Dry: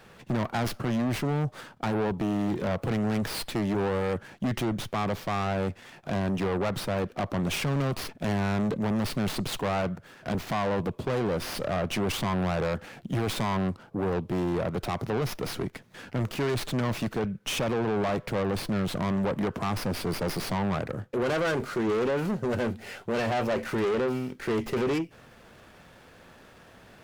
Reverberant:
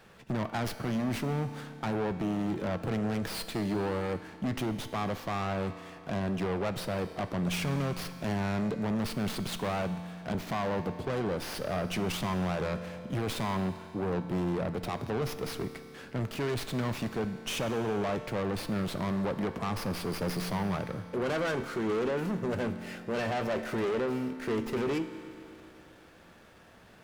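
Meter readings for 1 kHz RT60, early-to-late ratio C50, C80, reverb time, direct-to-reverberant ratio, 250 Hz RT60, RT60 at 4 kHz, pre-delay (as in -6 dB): 2.8 s, 10.5 dB, 11.0 dB, 2.8 s, 9.5 dB, 2.8 s, 2.6 s, 5 ms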